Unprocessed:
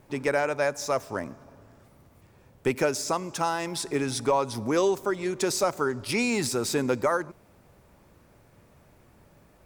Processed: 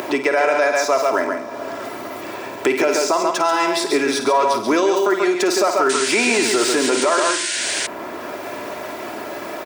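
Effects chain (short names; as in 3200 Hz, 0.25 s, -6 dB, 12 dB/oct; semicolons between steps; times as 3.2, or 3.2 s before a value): 4–6.13 half-wave gain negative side -3 dB; bell 11000 Hz -11 dB 1.6 oct; comb 3 ms, depth 52%; echo 0.136 s -6.5 dB; upward compressor, threshold -31 dBFS; HPF 380 Hz 12 dB/oct; flutter echo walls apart 9 m, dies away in 0.32 s; 5.89–7.87 painted sound noise 1400–9600 Hz -36 dBFS; maximiser +19 dB; three-band squash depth 40%; gain -6.5 dB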